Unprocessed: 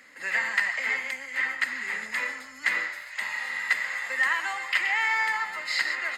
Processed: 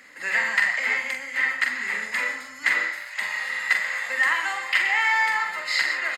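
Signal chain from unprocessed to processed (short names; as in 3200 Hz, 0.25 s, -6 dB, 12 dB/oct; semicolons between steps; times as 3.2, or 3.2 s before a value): doubler 44 ms -6.5 dB; gain +3 dB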